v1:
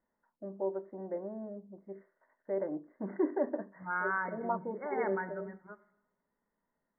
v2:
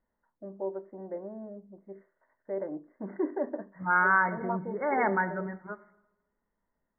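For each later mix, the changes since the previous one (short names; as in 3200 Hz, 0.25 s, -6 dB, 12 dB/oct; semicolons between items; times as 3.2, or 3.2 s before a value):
second voice +10.0 dB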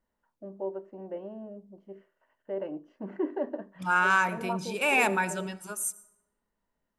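master: remove brick-wall FIR low-pass 2200 Hz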